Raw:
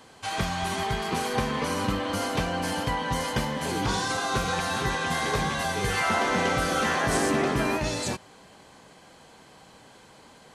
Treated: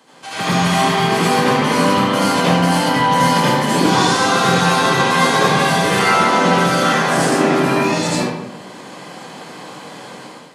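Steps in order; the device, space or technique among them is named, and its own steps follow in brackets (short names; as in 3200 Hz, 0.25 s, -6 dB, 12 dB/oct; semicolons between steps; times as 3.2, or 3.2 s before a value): far laptop microphone (reverb RT60 0.90 s, pre-delay 69 ms, DRR -7.5 dB; HPF 150 Hz 24 dB/oct; AGC gain up to 11 dB); gain -1 dB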